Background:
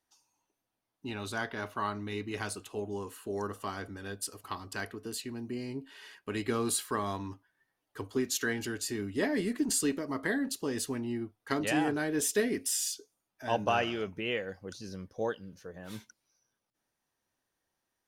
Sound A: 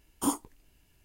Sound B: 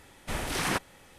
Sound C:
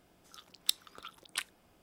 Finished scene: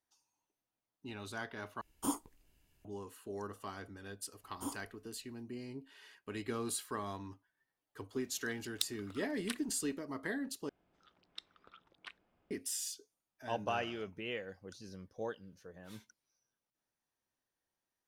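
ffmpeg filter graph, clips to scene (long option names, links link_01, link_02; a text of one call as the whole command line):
ffmpeg -i bed.wav -i cue0.wav -i cue1.wav -i cue2.wav -filter_complex "[1:a]asplit=2[link_01][link_02];[3:a]asplit=2[link_03][link_04];[0:a]volume=-7.5dB[link_05];[link_04]lowpass=2700[link_06];[link_05]asplit=3[link_07][link_08][link_09];[link_07]atrim=end=1.814[link_10];[link_01]atrim=end=1.04,asetpts=PTS-STARTPTS,volume=-7dB[link_11];[link_08]atrim=start=2.846:end=10.694[link_12];[link_06]atrim=end=1.82,asetpts=PTS-STARTPTS,volume=-10dB[link_13];[link_09]atrim=start=12.506[link_14];[link_02]atrim=end=1.04,asetpts=PTS-STARTPTS,volume=-13.5dB,afade=type=in:duration=0.004:curve=hsin,afade=type=out:start_time=1.036:duration=0.004:curve=hsin,adelay=4390[link_15];[link_03]atrim=end=1.82,asetpts=PTS-STARTPTS,volume=-6dB,afade=type=in:duration=0.004:curve=hsin,afade=type=out:start_time=1.816:duration=0.004:curve=hsin,adelay=8120[link_16];[link_10][link_11]acrossfade=duration=0.004:curve1=hsin:curve2=hsin[link_17];[link_17][link_12]acrossfade=duration=0.004:curve1=hsin:curve2=hsin[link_18];[link_18][link_13]acrossfade=duration=0.004:curve1=hsin:curve2=hsin[link_19];[link_19][link_14]acrossfade=duration=0.004:curve1=hsin:curve2=hsin[link_20];[link_20][link_15][link_16]amix=inputs=3:normalize=0" out.wav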